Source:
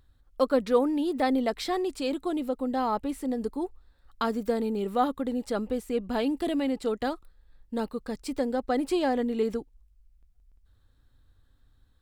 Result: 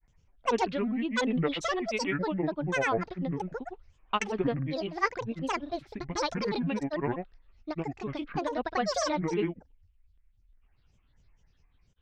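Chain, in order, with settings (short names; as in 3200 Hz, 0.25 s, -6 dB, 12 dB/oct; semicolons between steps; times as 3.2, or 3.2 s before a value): dynamic EQ 1100 Hz, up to +5 dB, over -42 dBFS, Q 1.6; ladder low-pass 3300 Hz, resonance 65%; grains, pitch spread up and down by 12 st; gain +8.5 dB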